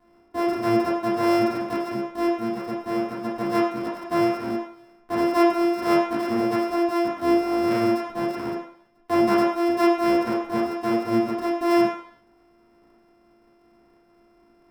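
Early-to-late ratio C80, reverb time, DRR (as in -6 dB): 7.5 dB, 0.60 s, -7.5 dB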